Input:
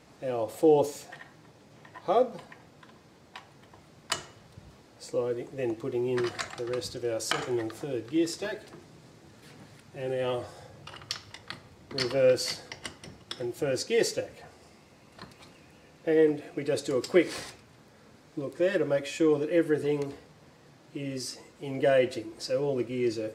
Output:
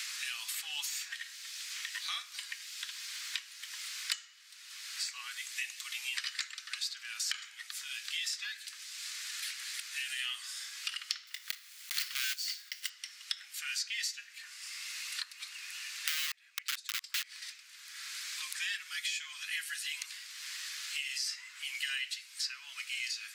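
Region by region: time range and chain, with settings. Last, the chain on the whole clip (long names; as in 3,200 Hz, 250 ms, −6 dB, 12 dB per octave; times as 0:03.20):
0:11.27–0:12.91: one scale factor per block 3 bits + low-shelf EQ 160 Hz −7 dB + wrap-around overflow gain 19 dB
0:15.23–0:17.42: high-pass filter 64 Hz + tilt shelving filter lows +6.5 dB, about 740 Hz + wrap-around overflow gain 20 dB
whole clip: Bessel high-pass filter 2,700 Hz, order 8; dynamic equaliser 9,800 Hz, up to −6 dB, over −55 dBFS, Q 0.99; multiband upward and downward compressor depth 100%; level +5.5 dB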